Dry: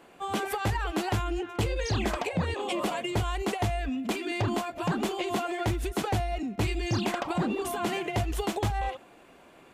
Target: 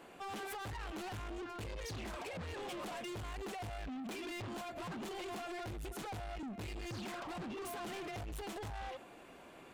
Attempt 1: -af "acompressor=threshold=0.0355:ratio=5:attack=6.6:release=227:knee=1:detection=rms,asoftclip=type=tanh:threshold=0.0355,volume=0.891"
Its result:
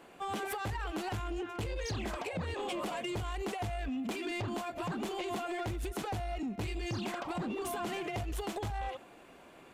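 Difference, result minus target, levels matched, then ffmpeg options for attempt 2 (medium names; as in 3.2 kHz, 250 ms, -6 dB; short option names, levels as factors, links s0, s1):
saturation: distortion -10 dB
-af "acompressor=threshold=0.0355:ratio=5:attack=6.6:release=227:knee=1:detection=rms,asoftclip=type=tanh:threshold=0.00944,volume=0.891"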